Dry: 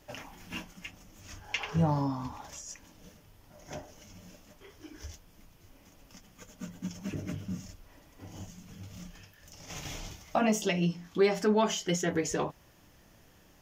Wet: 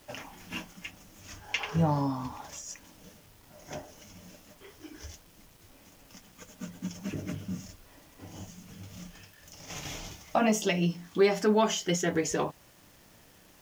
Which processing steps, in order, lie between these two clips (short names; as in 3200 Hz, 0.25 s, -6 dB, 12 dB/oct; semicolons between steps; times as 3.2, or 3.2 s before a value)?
low shelf 82 Hz -6.5 dB; requantised 10-bit, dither none; gain +2 dB